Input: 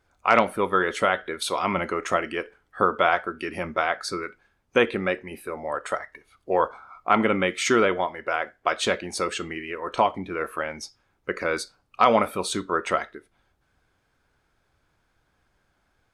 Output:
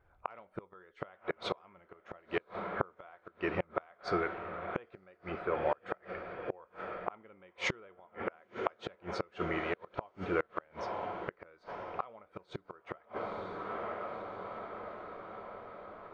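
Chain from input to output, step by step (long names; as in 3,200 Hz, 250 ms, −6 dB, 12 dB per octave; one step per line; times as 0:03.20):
feedback delay with all-pass diffusion 972 ms, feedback 62%, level −14.5 dB
low-pass that shuts in the quiet parts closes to 2,700 Hz, open at −16.5 dBFS
head-to-tape spacing loss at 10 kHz 28 dB
gate with flip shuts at −20 dBFS, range −33 dB
parametric band 250 Hz −9.5 dB 0.59 octaves
level +2 dB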